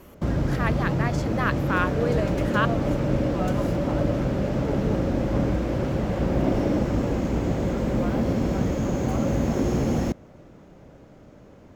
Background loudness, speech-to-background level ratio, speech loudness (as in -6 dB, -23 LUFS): -25.0 LUFS, -4.5 dB, -29.5 LUFS